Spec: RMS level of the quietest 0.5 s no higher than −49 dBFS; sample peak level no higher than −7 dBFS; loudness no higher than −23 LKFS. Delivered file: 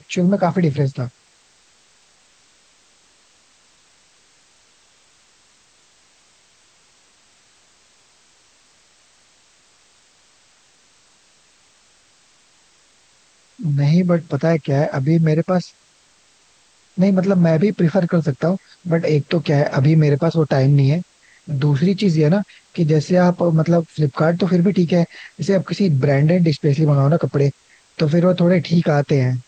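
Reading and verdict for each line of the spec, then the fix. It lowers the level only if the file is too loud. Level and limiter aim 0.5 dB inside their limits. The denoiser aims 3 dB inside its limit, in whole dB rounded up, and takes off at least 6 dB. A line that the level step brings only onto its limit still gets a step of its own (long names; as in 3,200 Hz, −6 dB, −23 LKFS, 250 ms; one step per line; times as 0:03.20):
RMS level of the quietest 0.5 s −55 dBFS: in spec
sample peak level −5.5 dBFS: out of spec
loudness −17.5 LKFS: out of spec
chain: level −6 dB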